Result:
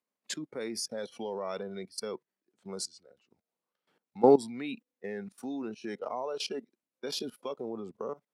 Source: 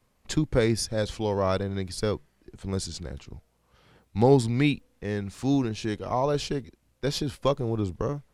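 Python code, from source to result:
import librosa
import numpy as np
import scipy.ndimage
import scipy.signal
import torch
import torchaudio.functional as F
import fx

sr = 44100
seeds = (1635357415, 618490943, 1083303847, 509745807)

y = fx.noise_reduce_blind(x, sr, reduce_db=14)
y = fx.level_steps(y, sr, step_db=18)
y = scipy.signal.sosfilt(scipy.signal.butter(4, 210.0, 'highpass', fs=sr, output='sos'), y)
y = F.gain(torch.from_numpy(y), 1.5).numpy()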